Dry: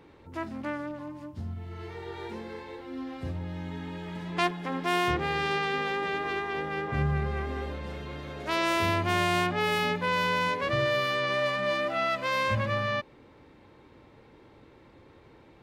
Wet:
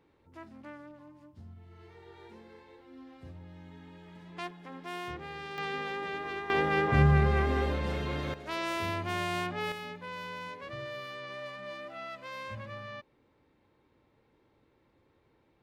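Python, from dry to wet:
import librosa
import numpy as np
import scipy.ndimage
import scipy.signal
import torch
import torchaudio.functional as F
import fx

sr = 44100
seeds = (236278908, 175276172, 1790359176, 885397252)

y = fx.gain(x, sr, db=fx.steps((0.0, -13.0), (5.58, -6.0), (6.5, 5.0), (8.34, -7.0), (9.72, -14.0)))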